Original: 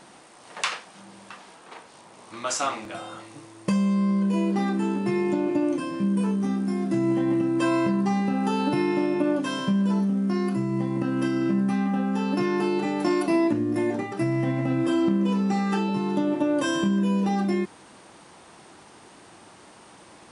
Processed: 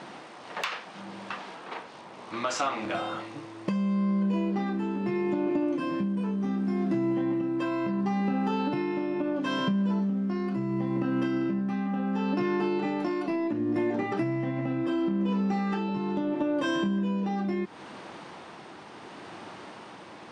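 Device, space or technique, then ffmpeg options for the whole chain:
AM radio: -af "highpass=110,lowpass=4000,acompressor=threshold=-31dB:ratio=6,asoftclip=type=tanh:threshold=-22dB,tremolo=f=0.72:d=0.29,volume=7dB"

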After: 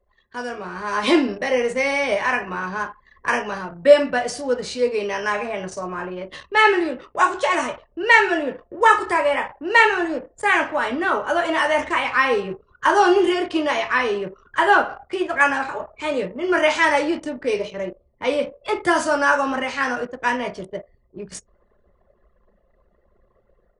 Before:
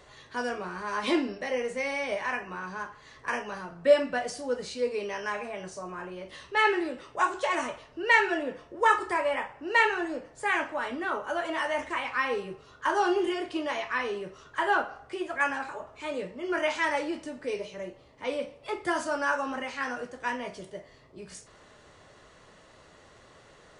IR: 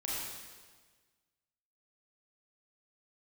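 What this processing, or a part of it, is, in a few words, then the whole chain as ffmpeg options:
voice memo with heavy noise removal: -af "anlmdn=0.0398,dynaudnorm=framelen=550:gausssize=3:maxgain=9.5dB,volume=1dB"

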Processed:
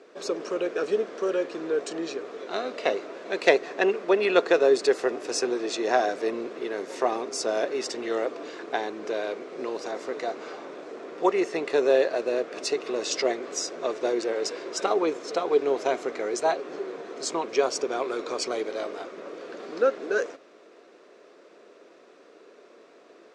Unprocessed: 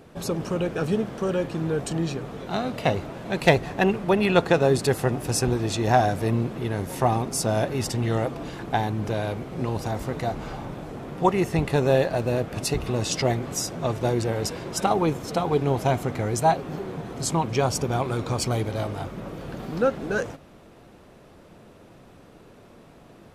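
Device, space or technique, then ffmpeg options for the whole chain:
phone speaker on a table: -af "highpass=frequency=340:width=0.5412,highpass=frequency=340:width=1.3066,equalizer=frequency=420:width_type=q:width=4:gain=4,equalizer=frequency=840:width_type=q:width=4:gain=-9,equalizer=frequency=3100:width_type=q:width=4:gain=-4,lowpass=frequency=7000:width=0.5412,lowpass=frequency=7000:width=1.3066"

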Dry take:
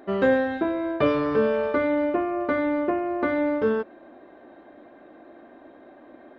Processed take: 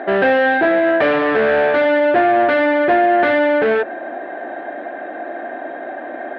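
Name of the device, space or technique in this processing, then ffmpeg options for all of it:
overdrive pedal into a guitar cabinet: -filter_complex "[0:a]asplit=2[link_01][link_02];[link_02]highpass=frequency=720:poles=1,volume=28dB,asoftclip=type=tanh:threshold=-9.5dB[link_03];[link_01][link_03]amix=inputs=2:normalize=0,lowpass=frequency=2000:poles=1,volume=-6dB,highpass=96,equalizer=frequency=140:width_type=q:width=4:gain=-4,equalizer=frequency=710:width_type=q:width=4:gain=8,equalizer=frequency=1100:width_type=q:width=4:gain=-7,equalizer=frequency=1700:width_type=q:width=4:gain=9,lowpass=frequency=3700:width=0.5412,lowpass=frequency=3700:width=1.3066"

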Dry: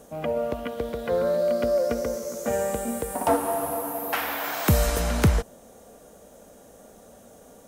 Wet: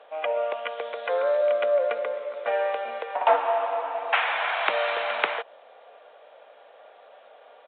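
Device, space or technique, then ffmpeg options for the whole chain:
musical greeting card: -af "aresample=8000,aresample=44100,highpass=frequency=600:width=0.5412,highpass=frequency=600:width=1.3066,equalizer=frequency=2400:width_type=o:width=0.4:gain=4.5,volume=4.5dB"

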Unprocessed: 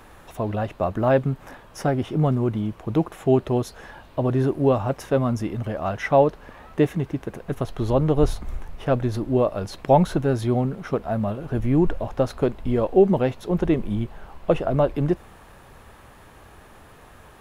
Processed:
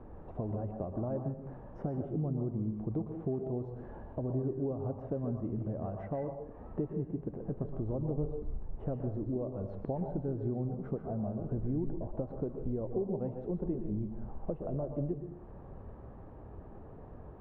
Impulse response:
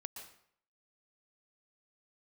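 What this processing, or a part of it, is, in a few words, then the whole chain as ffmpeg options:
television next door: -filter_complex "[0:a]acompressor=threshold=-35dB:ratio=4,lowpass=520[link_01];[1:a]atrim=start_sample=2205[link_02];[link_01][link_02]afir=irnorm=-1:irlink=0,volume=5.5dB"

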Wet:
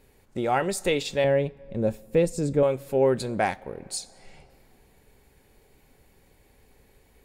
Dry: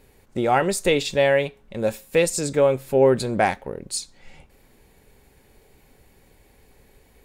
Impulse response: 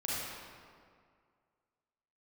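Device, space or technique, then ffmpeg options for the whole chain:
ducked reverb: -filter_complex "[0:a]asettb=1/sr,asplit=3[link_01][link_02][link_03];[link_01]atrim=end=1.244[link_04];[link_02]atrim=start=1.24:end=2.63,asetpts=PTS-STARTPTS,afade=type=in:duration=0.004:curve=qsin,afade=type=out:start_time=1.386:duration=0.004:curve=qsin,tiltshelf=frequency=670:gain=8.5[link_05];[link_03]atrim=start=2.626[link_06];[link_04][link_05]acrossfade=duration=0.004:curve1=hsin:curve2=qsin[link_07];[link_07][link_06]acrossfade=duration=0.004:curve1=qsin:curve2=hsin,asplit=3[link_08][link_09][link_10];[1:a]atrim=start_sample=2205[link_11];[link_09][link_11]afir=irnorm=-1:irlink=0[link_12];[link_10]apad=whole_len=319690[link_13];[link_12][link_13]sidechaincompress=threshold=-31dB:ratio=6:attack=9.8:release=557,volume=-16dB[link_14];[link_08][link_14]amix=inputs=2:normalize=0,volume=-5dB"

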